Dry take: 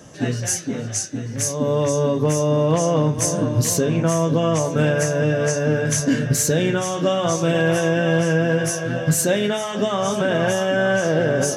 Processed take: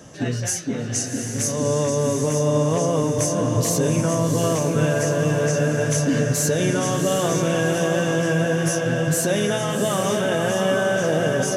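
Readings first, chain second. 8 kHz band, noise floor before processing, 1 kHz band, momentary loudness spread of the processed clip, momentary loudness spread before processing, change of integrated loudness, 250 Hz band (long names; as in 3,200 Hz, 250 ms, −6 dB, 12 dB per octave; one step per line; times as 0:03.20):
−1.0 dB, −28 dBFS, −1.0 dB, 4 LU, 4 LU, −1.0 dB, −1.0 dB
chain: brickwall limiter −13.5 dBFS, peak gain reduction 4.5 dB
on a send: feedback delay with all-pass diffusion 745 ms, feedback 43%, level −5 dB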